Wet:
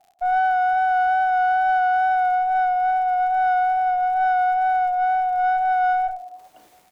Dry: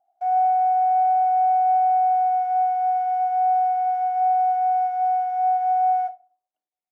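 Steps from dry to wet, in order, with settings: single-diode clipper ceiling -26 dBFS; treble shelf 2 kHz -8.5 dB; reverse; upward compressor, threshold -28 dBFS; reverse; doubling 37 ms -13 dB; crackle 88 per s -49 dBFS; wow and flutter 17 cents; trim +6 dB

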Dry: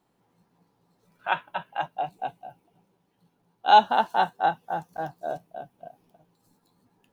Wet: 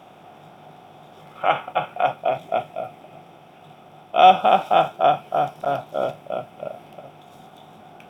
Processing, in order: spectral levelling over time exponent 0.6; tape speed -12%; trim +2.5 dB

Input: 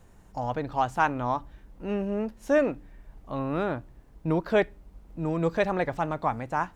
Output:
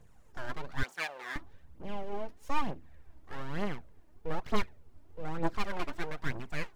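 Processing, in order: full-wave rectifier; phaser 1.1 Hz, delay 3.4 ms, feedback 54%; 0.83–1.36 s: high-pass 590 Hz 12 dB/octave; trim -7.5 dB

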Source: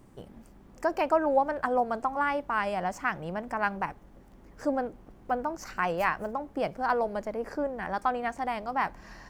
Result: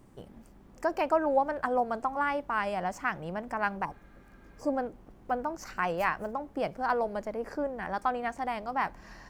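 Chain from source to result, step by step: spectral replace 3.87–4.67 s, 1.2–4.4 kHz after; trim -1.5 dB

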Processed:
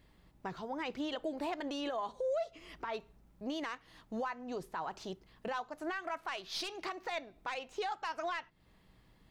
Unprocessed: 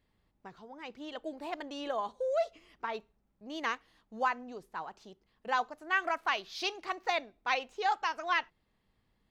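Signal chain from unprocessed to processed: tracing distortion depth 0.037 ms; compression 16:1, threshold -41 dBFS, peak gain reduction 18.5 dB; peak limiter -38.5 dBFS, peak gain reduction 9 dB; hum 60 Hz, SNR 32 dB; on a send: reverberation RT60 0.10 s, pre-delay 3 ms, DRR 16.5 dB; on the sum: trim +9.5 dB

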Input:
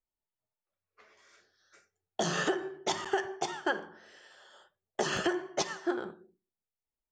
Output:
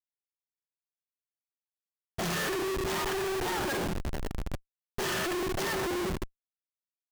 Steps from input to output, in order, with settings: hum notches 50/100/150/200/250/300/350/400/450/500 Hz; harmonic-percussive split percussive -16 dB; in parallel at -2.5 dB: compression, threshold -47 dBFS, peak gain reduction 18 dB; on the sum: Schmitt trigger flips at -47.5 dBFS; trim +9 dB

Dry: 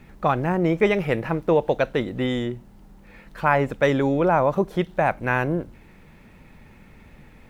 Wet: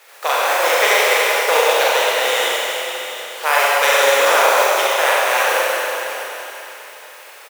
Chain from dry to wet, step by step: spectral contrast reduction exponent 0.47; Chebyshev high-pass 480 Hz, order 4; on a send: delay 731 ms -16 dB; on the sum: Schroeder reverb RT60 3.5 s, combs from 32 ms, DRR -7 dB; trim +1 dB

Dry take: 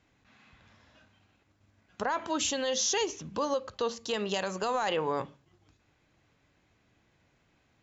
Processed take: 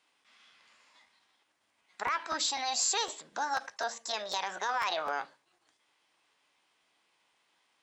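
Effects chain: high-pass 550 Hz 12 dB/octave; formant shift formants +5 st; crackling interface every 0.25 s, samples 512, repeat, from 0.56 s

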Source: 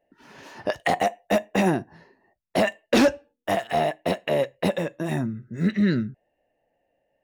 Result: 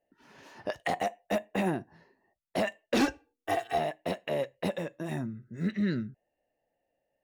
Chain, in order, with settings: 1.35–1.81 s: peaking EQ 5.7 kHz -10 dB 0.4 oct; 3.00–3.78 s: comb 2.6 ms, depth 90%; trim -8 dB

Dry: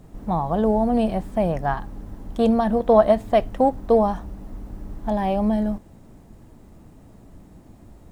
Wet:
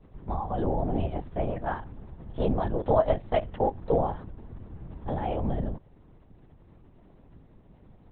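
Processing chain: LPC vocoder at 8 kHz whisper; trim -7.5 dB

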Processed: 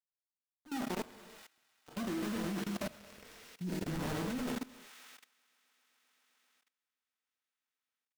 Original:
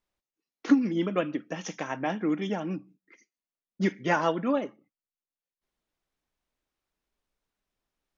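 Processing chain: one-bit delta coder 16 kbps, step -39.5 dBFS; Doppler pass-by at 3.12 s, 24 m/s, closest 5 m; resonant low shelf 340 Hz +11.5 dB, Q 1.5; band-stop 1.1 kHz, Q 9.9; bit crusher 6-bit; slow attack 106 ms; on a send: feedback echo behind a high-pass 131 ms, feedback 82%, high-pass 1.7 kHz, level -11 dB; on the sum: gated-style reverb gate 390 ms falling, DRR 1.5 dB; level held to a coarse grid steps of 19 dB; peaking EQ 460 Hz +6 dB 0.53 oct; trim +1 dB

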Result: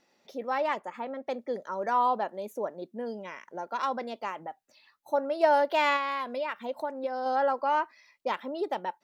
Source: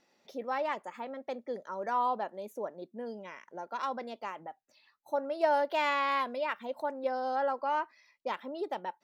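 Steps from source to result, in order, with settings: level rider gain up to 3 dB; 0.79–1.27 s: treble shelf 4 kHz -8.5 dB; 5.96–7.26 s: compression, threshold -30 dBFS, peak gain reduction 7.5 dB; trim +1.5 dB

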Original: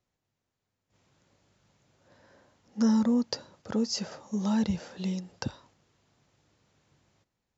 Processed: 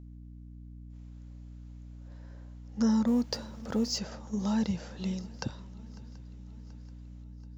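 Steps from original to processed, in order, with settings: 3.07–3.98 s: companding laws mixed up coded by mu; hum 60 Hz, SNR 12 dB; on a send: shuffle delay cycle 732 ms, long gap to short 3:1, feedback 53%, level -22.5 dB; on the sum: trim -2 dB

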